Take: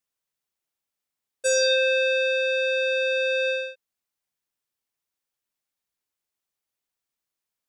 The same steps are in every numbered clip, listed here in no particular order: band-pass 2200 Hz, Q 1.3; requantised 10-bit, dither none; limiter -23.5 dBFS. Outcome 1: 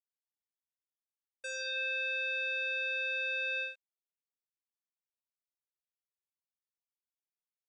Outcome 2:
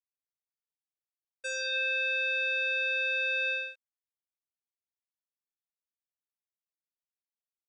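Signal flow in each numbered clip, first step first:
requantised > limiter > band-pass; requantised > band-pass > limiter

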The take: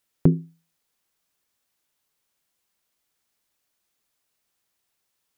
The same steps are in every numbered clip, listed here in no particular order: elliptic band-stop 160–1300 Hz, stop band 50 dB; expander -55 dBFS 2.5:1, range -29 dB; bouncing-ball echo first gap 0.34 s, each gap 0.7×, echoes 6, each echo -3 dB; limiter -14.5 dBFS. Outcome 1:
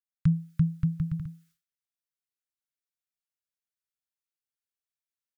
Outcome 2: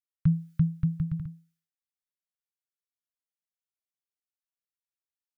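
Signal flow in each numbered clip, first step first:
bouncing-ball echo > expander > elliptic band-stop > limiter; elliptic band-stop > expander > bouncing-ball echo > limiter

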